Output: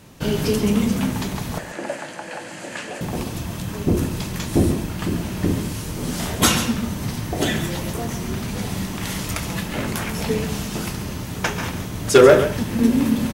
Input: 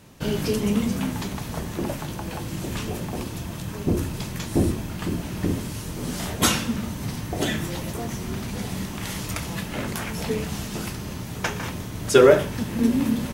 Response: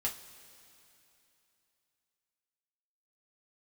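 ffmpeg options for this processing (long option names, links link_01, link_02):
-filter_complex "[0:a]aeval=exprs='0.501*(abs(mod(val(0)/0.501+3,4)-2)-1)':channel_layout=same,asettb=1/sr,asplit=3[link_01][link_02][link_03];[link_01]atrim=end=1.584[link_04];[link_02]atrim=start=1.58:end=3.01,asetpts=PTS-STARTPTS,afade=type=in:duration=0.004:curve=qsin,afade=type=out:start_time=1.426:duration=0.004:curve=qsin,highpass=390,equalizer=frequency=400:width_type=q:width=4:gain=-8,equalizer=frequency=560:width_type=q:width=4:gain=5,equalizer=frequency=1100:width_type=q:width=4:gain=-6,equalizer=frequency=1700:width_type=q:width=4:gain=7,equalizer=frequency=3600:width_type=q:width=4:gain=-7,equalizer=frequency=5600:width_type=q:width=4:gain=-7,lowpass=frequency=8800:width=0.5412,lowpass=frequency=8800:width=1.3066[link_05];[link_03]atrim=start=3.006[link_06];[link_04][link_05]acrossfade=duration=0.004:curve1=hsin:curve2=qsin[link_07];[link_07][link_06]acrossfade=duration=0.004:curve1=qsin:curve2=hsin,aecho=1:1:138:0.299,volume=3.5dB"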